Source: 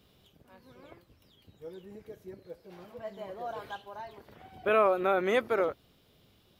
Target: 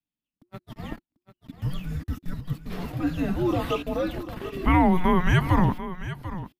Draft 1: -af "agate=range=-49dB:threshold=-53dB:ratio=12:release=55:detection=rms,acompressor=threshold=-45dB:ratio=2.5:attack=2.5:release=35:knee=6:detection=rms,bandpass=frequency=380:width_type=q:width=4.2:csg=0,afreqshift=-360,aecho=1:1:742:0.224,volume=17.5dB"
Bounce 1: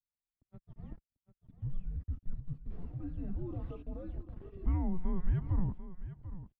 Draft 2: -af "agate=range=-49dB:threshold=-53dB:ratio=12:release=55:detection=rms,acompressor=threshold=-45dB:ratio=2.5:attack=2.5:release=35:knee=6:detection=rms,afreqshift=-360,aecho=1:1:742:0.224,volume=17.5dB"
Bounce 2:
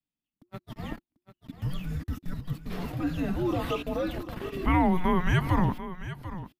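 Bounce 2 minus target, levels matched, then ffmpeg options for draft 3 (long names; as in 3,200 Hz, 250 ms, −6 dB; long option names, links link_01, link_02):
downward compressor: peak gain reduction +4 dB
-af "agate=range=-49dB:threshold=-53dB:ratio=12:release=55:detection=rms,acompressor=threshold=-38.5dB:ratio=2.5:attack=2.5:release=35:knee=6:detection=rms,afreqshift=-360,aecho=1:1:742:0.224,volume=17.5dB"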